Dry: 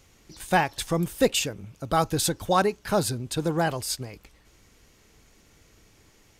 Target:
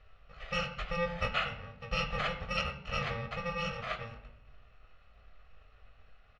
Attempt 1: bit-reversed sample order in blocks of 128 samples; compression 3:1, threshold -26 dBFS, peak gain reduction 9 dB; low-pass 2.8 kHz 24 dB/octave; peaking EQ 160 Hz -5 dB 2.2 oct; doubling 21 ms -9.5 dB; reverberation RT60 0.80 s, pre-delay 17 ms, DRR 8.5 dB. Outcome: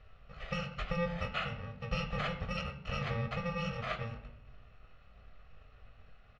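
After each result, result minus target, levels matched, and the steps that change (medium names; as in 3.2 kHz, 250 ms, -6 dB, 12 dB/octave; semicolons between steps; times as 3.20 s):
compression: peak gain reduction +9 dB; 125 Hz band +5.0 dB
remove: compression 3:1, threshold -26 dBFS, peak gain reduction 9 dB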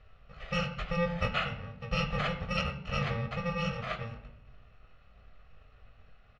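125 Hz band +4.5 dB
change: peaking EQ 160 Hz -12.5 dB 2.2 oct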